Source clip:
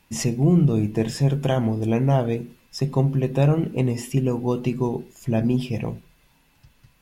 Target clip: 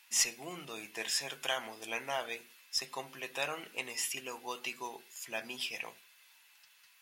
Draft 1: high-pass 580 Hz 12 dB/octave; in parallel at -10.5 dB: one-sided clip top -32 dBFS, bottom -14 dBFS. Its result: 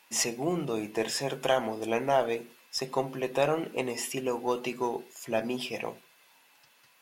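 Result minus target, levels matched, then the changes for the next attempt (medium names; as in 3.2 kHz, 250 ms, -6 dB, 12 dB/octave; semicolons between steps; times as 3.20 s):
500 Hz band +8.5 dB
change: high-pass 1.6 kHz 12 dB/octave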